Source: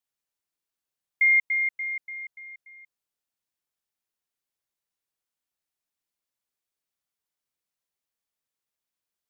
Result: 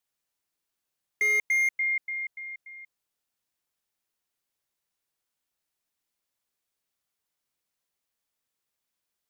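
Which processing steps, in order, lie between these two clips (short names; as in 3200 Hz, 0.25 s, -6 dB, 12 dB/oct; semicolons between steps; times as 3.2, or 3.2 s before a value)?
slew limiter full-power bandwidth 100 Hz; gain +4 dB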